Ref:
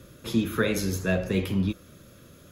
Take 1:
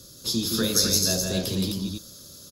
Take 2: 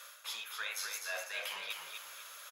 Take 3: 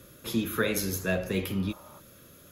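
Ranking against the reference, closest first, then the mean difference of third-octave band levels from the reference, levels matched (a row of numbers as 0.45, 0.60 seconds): 3, 1, 2; 3.0, 8.0, 19.0 decibels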